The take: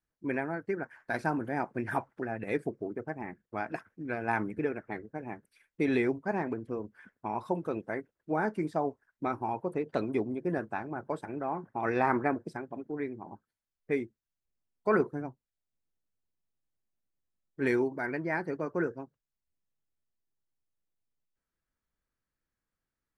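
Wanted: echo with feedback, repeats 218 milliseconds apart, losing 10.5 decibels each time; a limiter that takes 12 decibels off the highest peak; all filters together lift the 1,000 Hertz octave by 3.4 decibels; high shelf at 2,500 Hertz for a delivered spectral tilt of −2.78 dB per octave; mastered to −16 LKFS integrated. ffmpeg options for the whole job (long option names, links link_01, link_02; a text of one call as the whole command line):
ffmpeg -i in.wav -af "equalizer=frequency=1000:width_type=o:gain=5,highshelf=frequency=2500:gain=-4,alimiter=limit=-24dB:level=0:latency=1,aecho=1:1:218|436|654:0.299|0.0896|0.0269,volume=20dB" out.wav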